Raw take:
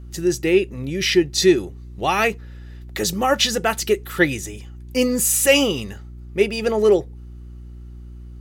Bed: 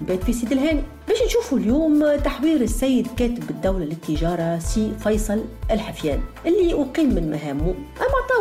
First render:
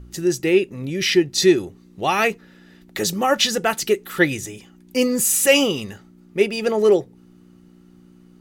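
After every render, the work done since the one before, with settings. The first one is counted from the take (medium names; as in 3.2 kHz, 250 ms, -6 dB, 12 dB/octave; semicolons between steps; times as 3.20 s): de-hum 60 Hz, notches 2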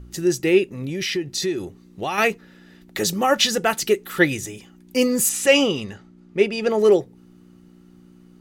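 0.80–2.18 s: compression 3:1, threshold -23 dBFS; 5.29–6.71 s: distance through air 57 m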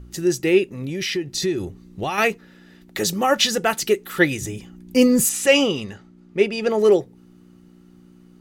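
1.34–2.10 s: bass shelf 130 Hz +11.5 dB; 4.41–5.26 s: bass shelf 260 Hz +11 dB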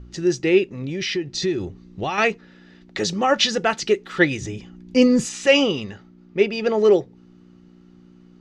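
low-pass 6 kHz 24 dB/octave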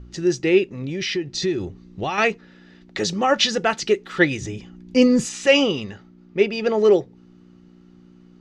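no audible change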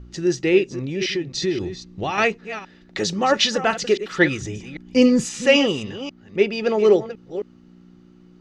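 chunks repeated in reverse 265 ms, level -12 dB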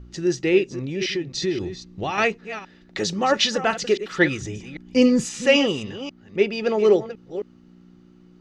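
trim -1.5 dB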